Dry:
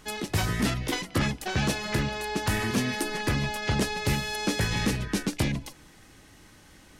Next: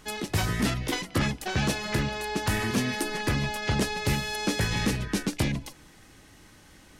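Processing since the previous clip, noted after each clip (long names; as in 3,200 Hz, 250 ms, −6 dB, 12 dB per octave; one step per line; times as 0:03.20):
no processing that can be heard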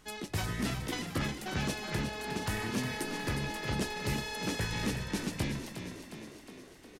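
echo with shifted repeats 360 ms, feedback 61%, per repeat +39 Hz, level −8.5 dB
level −7.5 dB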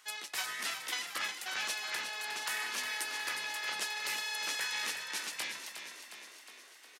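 high-pass filter 1,200 Hz 12 dB per octave
level +3.5 dB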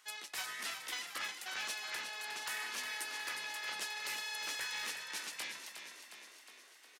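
hard clipping −28 dBFS, distortion −23 dB
level −4 dB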